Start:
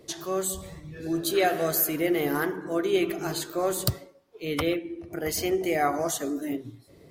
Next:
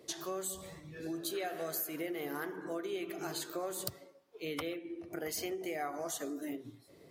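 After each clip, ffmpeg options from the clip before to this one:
ffmpeg -i in.wav -af "acompressor=threshold=-31dB:ratio=6,highpass=frequency=240:poles=1,volume=-3.5dB" out.wav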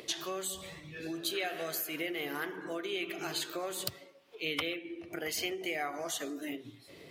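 ffmpeg -i in.wav -af "equalizer=frequency=2800:width_type=o:width=1.3:gain=11.5,acompressor=mode=upward:threshold=-45dB:ratio=2.5" out.wav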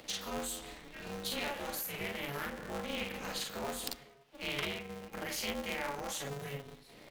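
ffmpeg -i in.wav -af "aecho=1:1:42|53:0.668|0.447,aeval=exprs='val(0)*sgn(sin(2*PI*140*n/s))':channel_layout=same,volume=-4.5dB" out.wav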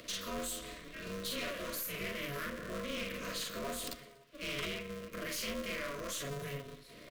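ffmpeg -i in.wav -af "aeval=exprs='(tanh(63.1*val(0)+0.25)-tanh(0.25))/63.1':channel_layout=same,asuperstop=centerf=830:order=20:qfactor=3.7,aecho=1:1:120|240|360:0.075|0.0382|0.0195,volume=2.5dB" out.wav

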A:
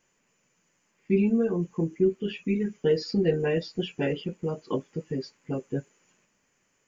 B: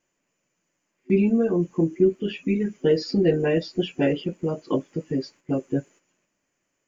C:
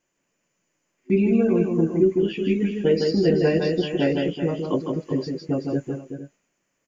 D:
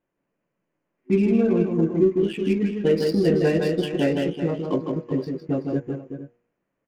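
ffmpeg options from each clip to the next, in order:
ffmpeg -i in.wav -af "agate=range=-9dB:threshold=-53dB:ratio=16:detection=peak,superequalizer=6b=1.78:8b=1.58,volume=3dB" out.wav
ffmpeg -i in.wav -af "aecho=1:1:157|380|454|475:0.631|0.316|0.133|0.119" out.wav
ffmpeg -i in.wav -af "adynamicsmooth=sensitivity=7:basefreq=1600,bandreject=frequency=119.4:width_type=h:width=4,bandreject=frequency=238.8:width_type=h:width=4,bandreject=frequency=358.2:width_type=h:width=4,bandreject=frequency=477.6:width_type=h:width=4,bandreject=frequency=597:width_type=h:width=4,bandreject=frequency=716.4:width_type=h:width=4,bandreject=frequency=835.8:width_type=h:width=4,bandreject=frequency=955.2:width_type=h:width=4,bandreject=frequency=1074.6:width_type=h:width=4,bandreject=frequency=1194:width_type=h:width=4,bandreject=frequency=1313.4:width_type=h:width=4,bandreject=frequency=1432.8:width_type=h:width=4,bandreject=frequency=1552.2:width_type=h:width=4,bandreject=frequency=1671.6:width_type=h:width=4,bandreject=frequency=1791:width_type=h:width=4,bandreject=frequency=1910.4:width_type=h:width=4,bandreject=frequency=2029.8:width_type=h:width=4,bandreject=frequency=2149.2:width_type=h:width=4,bandreject=frequency=2268.6:width_type=h:width=4,bandreject=frequency=2388:width_type=h:width=4" out.wav

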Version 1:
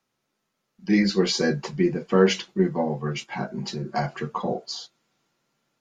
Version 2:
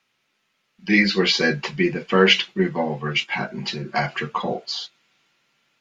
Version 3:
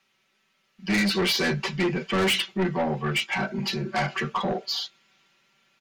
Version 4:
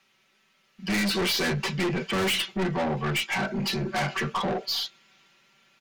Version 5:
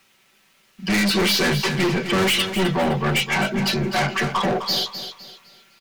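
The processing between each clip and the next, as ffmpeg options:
ffmpeg -i in.wav -filter_complex "[0:a]acrossover=split=5600[link_01][link_02];[link_02]acompressor=threshold=-51dB:ratio=4:attack=1:release=60[link_03];[link_01][link_03]amix=inputs=2:normalize=0,equalizer=frequency=2600:width_type=o:width=1.8:gain=14" out.wav
ffmpeg -i in.wav -af "aecho=1:1:5.2:0.55,asoftclip=type=tanh:threshold=-20dB" out.wav
ffmpeg -i in.wav -af "aeval=exprs='(tanh(22.4*val(0)+0.1)-tanh(0.1))/22.4':channel_layout=same,volume=3.5dB" out.wav
ffmpeg -i in.wav -af "acrusher=bits=10:mix=0:aa=0.000001,aecho=1:1:256|512|768|1024:0.316|0.104|0.0344|0.0114,volume=6dB" out.wav

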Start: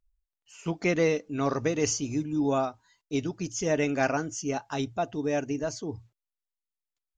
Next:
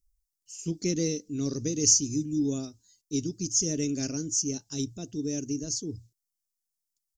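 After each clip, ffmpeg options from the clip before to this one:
ffmpeg -i in.wav -af "firequalizer=gain_entry='entry(330,0);entry(750,-26);entry(5300,10)':delay=0.05:min_phase=1" out.wav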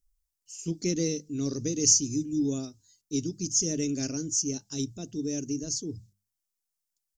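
ffmpeg -i in.wav -af "bandreject=frequency=50:width_type=h:width=6,bandreject=frequency=100:width_type=h:width=6,bandreject=frequency=150:width_type=h:width=6,bandreject=frequency=200:width_type=h:width=6" out.wav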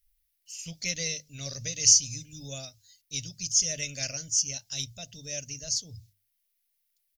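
ffmpeg -i in.wav -af "firequalizer=gain_entry='entry(100,0);entry(340,-29);entry(570,4);entry(1000,-6);entry(2000,10);entry(3800,9);entry(7400,-1);entry(11000,11)':delay=0.05:min_phase=1" out.wav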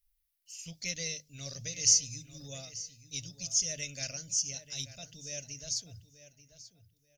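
ffmpeg -i in.wav -filter_complex "[0:a]asplit=2[link_01][link_02];[link_02]adelay=886,lowpass=frequency=4000:poles=1,volume=-13dB,asplit=2[link_03][link_04];[link_04]adelay=886,lowpass=frequency=4000:poles=1,volume=0.23,asplit=2[link_05][link_06];[link_06]adelay=886,lowpass=frequency=4000:poles=1,volume=0.23[link_07];[link_01][link_03][link_05][link_07]amix=inputs=4:normalize=0,volume=-5dB" out.wav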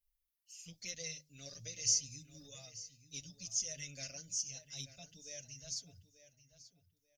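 ffmpeg -i in.wav -filter_complex "[0:a]asplit=2[link_01][link_02];[link_02]adelay=5.9,afreqshift=1.1[link_03];[link_01][link_03]amix=inputs=2:normalize=1,volume=-4.5dB" out.wav

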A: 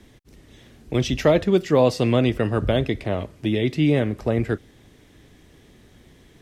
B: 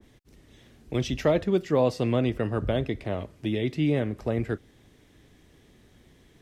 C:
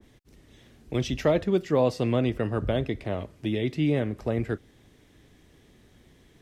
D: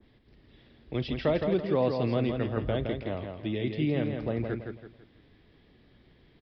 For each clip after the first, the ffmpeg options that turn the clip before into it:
ffmpeg -i in.wav -af "adynamicequalizer=threshold=0.0178:dfrequency=2000:dqfactor=0.7:tfrequency=2000:tqfactor=0.7:attack=5:release=100:ratio=0.375:range=2:mode=cutabove:tftype=highshelf,volume=-5.5dB" out.wav
ffmpeg -i in.wav -af anull out.wav
ffmpeg -i in.wav -af "aecho=1:1:165|330|495|660:0.531|0.186|0.065|0.0228,aresample=11025,aresample=44100,volume=-4dB" out.wav

